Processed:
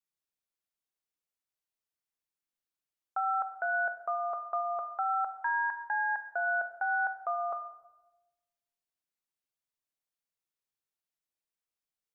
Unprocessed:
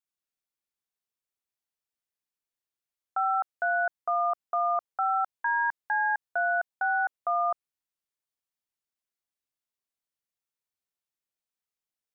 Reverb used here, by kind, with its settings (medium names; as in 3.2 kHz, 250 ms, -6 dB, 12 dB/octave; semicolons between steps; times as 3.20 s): simulated room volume 540 m³, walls mixed, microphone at 0.57 m; trim -3.5 dB